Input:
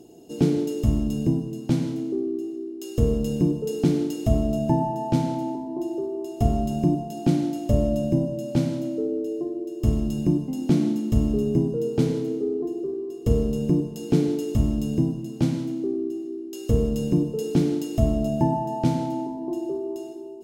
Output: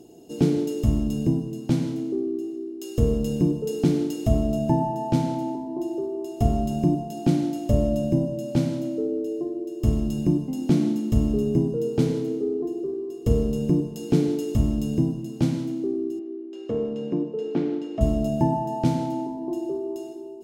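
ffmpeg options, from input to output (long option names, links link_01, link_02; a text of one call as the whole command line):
ffmpeg -i in.wav -filter_complex "[0:a]asettb=1/sr,asplit=3[link_01][link_02][link_03];[link_01]atrim=end=16.194[link_04];[link_02]atrim=start=16.19:end=18.01,asetpts=PTS-STARTPTS,afade=type=in:duration=0.004:curve=qsin,afade=type=out:start_time=1.816:duration=0.004:curve=qsin,highpass=280,lowpass=2300[link_05];[link_03]atrim=start=18.006[link_06];[link_04][link_05]acrossfade=duration=0.004:curve1=hsin:curve2=qsin[link_07];[link_07][link_06]acrossfade=duration=0.004:curve1=qsin:curve2=hsin" out.wav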